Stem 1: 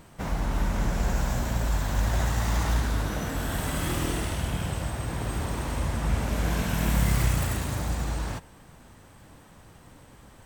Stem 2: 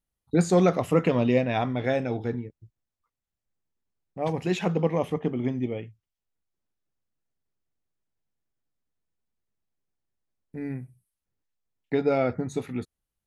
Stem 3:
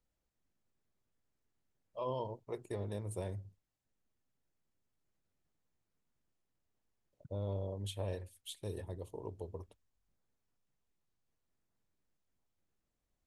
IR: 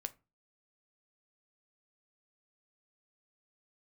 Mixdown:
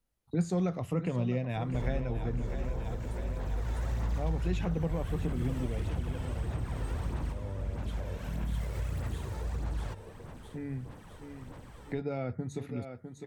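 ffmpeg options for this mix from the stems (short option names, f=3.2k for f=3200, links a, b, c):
-filter_complex "[0:a]aphaser=in_gain=1:out_gain=1:delay=2.3:decay=0.48:speed=1.6:type=sinusoidal,adelay=1550,volume=-0.5dB[a];[1:a]volume=0dB,asplit=2[b][c];[c]volume=-13dB[d];[2:a]volume=0.5dB,asplit=3[e][f][g];[f]volume=-7.5dB[h];[g]apad=whole_len=529225[i];[a][i]sidechaincompress=threshold=-43dB:ratio=8:attack=16:release=977[j];[j][e]amix=inputs=2:normalize=0,highshelf=f=5.1k:g=-8.5,acompressor=threshold=-31dB:ratio=3,volume=0dB[k];[d][h]amix=inputs=2:normalize=0,aecho=0:1:654|1308|1962|2616|3270|3924|4578|5232|5886:1|0.58|0.336|0.195|0.113|0.0656|0.0381|0.0221|0.0128[l];[b][k][l]amix=inputs=3:normalize=0,acrossover=split=150[m][n];[n]acompressor=threshold=-44dB:ratio=2[o];[m][o]amix=inputs=2:normalize=0"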